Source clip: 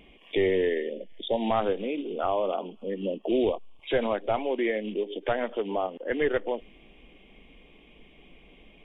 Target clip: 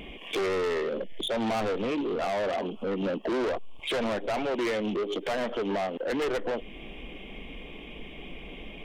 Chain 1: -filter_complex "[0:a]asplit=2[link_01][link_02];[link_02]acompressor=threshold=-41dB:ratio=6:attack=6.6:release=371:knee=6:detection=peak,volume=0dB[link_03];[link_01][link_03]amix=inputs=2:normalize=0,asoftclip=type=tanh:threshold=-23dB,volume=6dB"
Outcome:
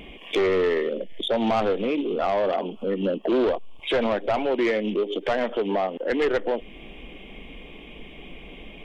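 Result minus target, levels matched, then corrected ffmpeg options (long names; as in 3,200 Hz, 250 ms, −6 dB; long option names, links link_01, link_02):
soft clipping: distortion −7 dB
-filter_complex "[0:a]asplit=2[link_01][link_02];[link_02]acompressor=threshold=-41dB:ratio=6:attack=6.6:release=371:knee=6:detection=peak,volume=0dB[link_03];[link_01][link_03]amix=inputs=2:normalize=0,asoftclip=type=tanh:threshold=-32dB,volume=6dB"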